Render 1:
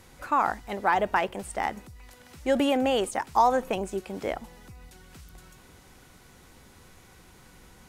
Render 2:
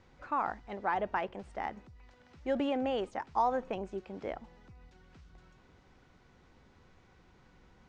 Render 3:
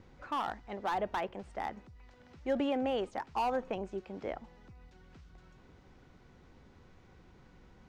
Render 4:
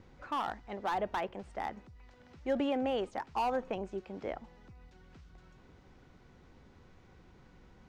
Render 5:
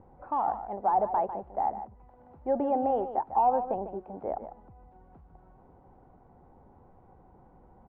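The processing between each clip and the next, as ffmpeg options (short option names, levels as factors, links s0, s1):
-af "lowpass=f=6300:w=0.5412,lowpass=f=6300:w=1.3066,highshelf=f=3500:g=-10.5,volume=0.422"
-filter_complex "[0:a]acrossover=split=570[s0][s1];[s0]acompressor=mode=upward:threshold=0.00251:ratio=2.5[s2];[s1]asoftclip=type=hard:threshold=0.0299[s3];[s2][s3]amix=inputs=2:normalize=0"
-af anull
-filter_complex "[0:a]lowpass=f=810:t=q:w=3.5,asplit=2[s0][s1];[s1]aecho=0:1:149:0.282[s2];[s0][s2]amix=inputs=2:normalize=0"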